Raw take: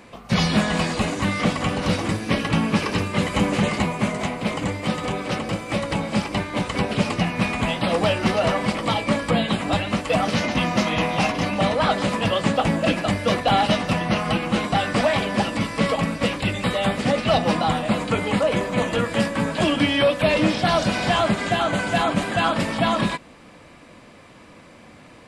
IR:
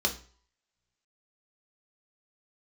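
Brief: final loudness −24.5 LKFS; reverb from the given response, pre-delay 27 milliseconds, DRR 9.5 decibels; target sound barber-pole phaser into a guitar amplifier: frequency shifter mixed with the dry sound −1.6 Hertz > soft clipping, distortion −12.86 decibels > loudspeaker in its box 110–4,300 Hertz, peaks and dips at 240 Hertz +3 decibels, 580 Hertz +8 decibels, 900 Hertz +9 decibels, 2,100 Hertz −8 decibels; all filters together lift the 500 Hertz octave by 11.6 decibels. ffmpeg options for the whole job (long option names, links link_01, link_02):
-filter_complex "[0:a]equalizer=frequency=500:width_type=o:gain=6.5,asplit=2[link_01][link_02];[1:a]atrim=start_sample=2205,adelay=27[link_03];[link_02][link_03]afir=irnorm=-1:irlink=0,volume=-18dB[link_04];[link_01][link_04]amix=inputs=2:normalize=0,asplit=2[link_05][link_06];[link_06]afreqshift=-1.6[link_07];[link_05][link_07]amix=inputs=2:normalize=1,asoftclip=threshold=-17dB,highpass=110,equalizer=frequency=240:width_type=q:width=4:gain=3,equalizer=frequency=580:width_type=q:width=4:gain=8,equalizer=frequency=900:width_type=q:width=4:gain=9,equalizer=frequency=2100:width_type=q:width=4:gain=-8,lowpass=frequency=4300:width=0.5412,lowpass=frequency=4300:width=1.3066,volume=-4dB"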